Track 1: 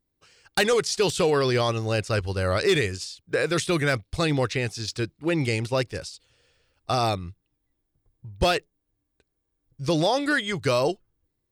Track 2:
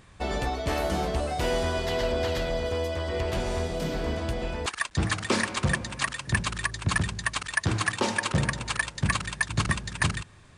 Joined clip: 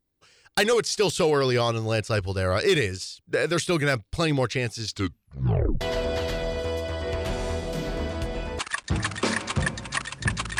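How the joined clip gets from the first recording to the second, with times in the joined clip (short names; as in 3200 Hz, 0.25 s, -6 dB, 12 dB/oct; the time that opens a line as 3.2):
track 1
4.87 tape stop 0.94 s
5.81 switch to track 2 from 1.88 s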